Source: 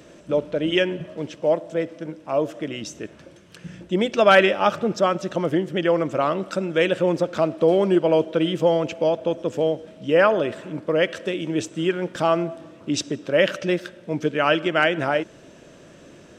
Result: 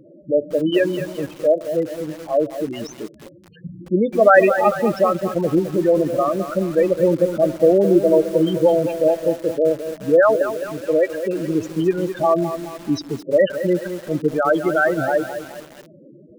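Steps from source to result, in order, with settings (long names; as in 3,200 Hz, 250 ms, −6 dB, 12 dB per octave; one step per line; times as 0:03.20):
spectral peaks only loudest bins 8
0:10.33–0:10.80: output level in coarse steps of 11 dB
feedback echo at a low word length 212 ms, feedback 55%, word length 6 bits, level −9.5 dB
level +4 dB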